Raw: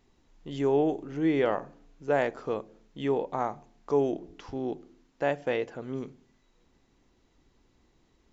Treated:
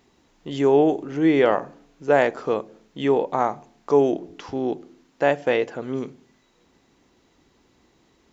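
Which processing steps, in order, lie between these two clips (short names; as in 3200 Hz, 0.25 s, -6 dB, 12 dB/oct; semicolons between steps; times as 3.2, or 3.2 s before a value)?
HPF 160 Hz 6 dB/oct; gain +8.5 dB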